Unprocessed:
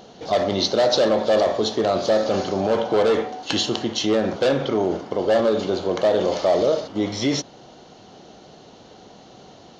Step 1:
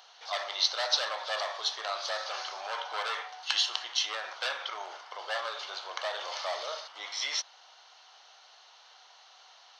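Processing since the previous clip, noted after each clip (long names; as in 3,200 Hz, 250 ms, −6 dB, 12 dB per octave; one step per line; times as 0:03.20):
high-pass filter 970 Hz 24 dB per octave
notch filter 6,900 Hz, Q 6.1
level −3 dB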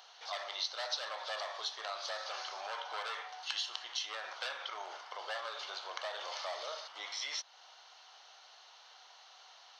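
downward compressor 2 to 1, threshold −39 dBFS, peak gain reduction 10 dB
level −1.5 dB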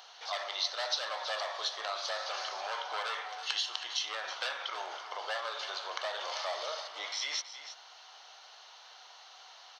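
single-tap delay 324 ms −12 dB
level +4 dB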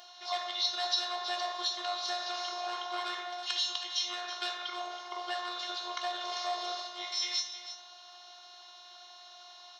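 phases set to zero 357 Hz
on a send at −5 dB: convolution reverb RT60 0.70 s, pre-delay 3 ms
on the sum: level +1.5 dB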